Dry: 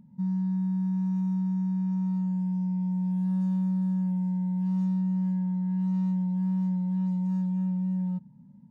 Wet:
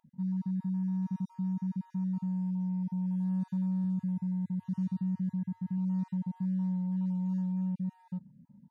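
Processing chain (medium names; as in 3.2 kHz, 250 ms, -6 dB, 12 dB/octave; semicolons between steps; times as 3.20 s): random holes in the spectrogram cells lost 25%; 3.84–5.78 s: graphic EQ with 31 bands 100 Hz +7 dB, 500 Hz -6 dB, 800 Hz -10 dB; trim -4 dB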